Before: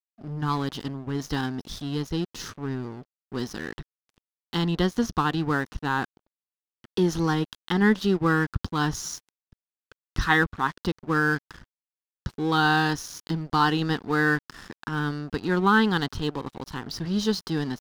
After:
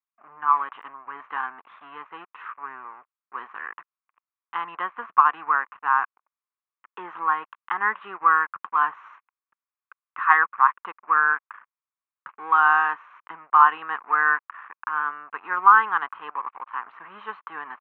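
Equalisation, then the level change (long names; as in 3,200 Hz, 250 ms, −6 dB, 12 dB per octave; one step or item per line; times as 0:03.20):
high-pass with resonance 1,100 Hz, resonance Q 4.9
elliptic low-pass filter 2,500 Hz, stop band 50 dB
−1.0 dB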